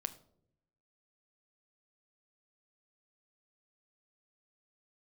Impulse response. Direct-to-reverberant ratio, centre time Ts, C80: 9.5 dB, 4 ms, 19.0 dB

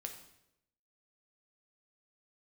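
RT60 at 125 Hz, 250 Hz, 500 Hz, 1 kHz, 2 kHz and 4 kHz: 0.90, 0.85, 0.90, 0.75, 0.75, 0.70 s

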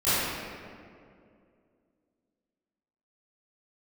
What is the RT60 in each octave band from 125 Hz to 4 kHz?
2.5, 2.9, 2.7, 2.0, 1.8, 1.2 s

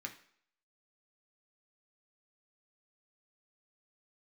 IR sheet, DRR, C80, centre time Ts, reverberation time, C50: 1.5 dB, 16.0 dB, 11 ms, not exponential, 12.0 dB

